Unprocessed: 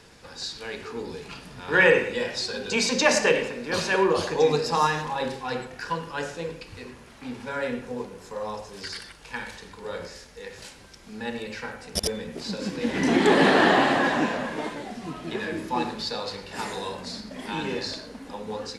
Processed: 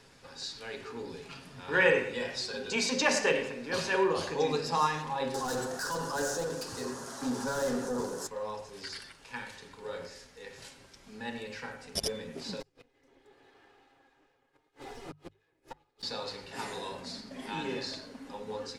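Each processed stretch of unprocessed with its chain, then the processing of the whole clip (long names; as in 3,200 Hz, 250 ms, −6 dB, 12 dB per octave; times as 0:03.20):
0:05.34–0:08.27: mid-hump overdrive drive 27 dB, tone 6,300 Hz, clips at −16 dBFS + drawn EQ curve 270 Hz 0 dB, 1,600 Hz −6 dB, 2,300 Hz −22 dB, 6,100 Hz +3 dB
0:12.60–0:16.03: lower of the sound and its delayed copy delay 2.4 ms + gate with flip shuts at −24 dBFS, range −36 dB
whole clip: mains-hum notches 50/100/150 Hz; comb filter 7.4 ms, depth 40%; level −6.5 dB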